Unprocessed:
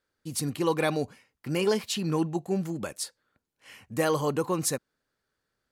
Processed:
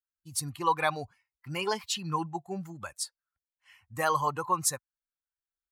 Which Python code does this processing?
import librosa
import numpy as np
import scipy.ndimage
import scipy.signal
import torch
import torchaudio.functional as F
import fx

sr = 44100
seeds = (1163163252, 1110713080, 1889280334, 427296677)

y = fx.bin_expand(x, sr, power=1.5)
y = fx.graphic_eq(y, sr, hz=(250, 500, 1000, 8000), db=(-11, -6, 11, 3))